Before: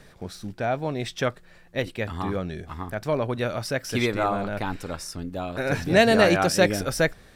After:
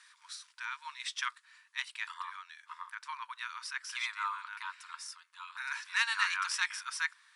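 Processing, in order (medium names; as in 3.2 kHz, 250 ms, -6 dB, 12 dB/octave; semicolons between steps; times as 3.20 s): tracing distortion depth 0.031 ms; brick-wall FIR band-pass 900–11000 Hz; treble shelf 2.8 kHz +4.5 dB, from 2.14 s -2.5 dB; trim -5.5 dB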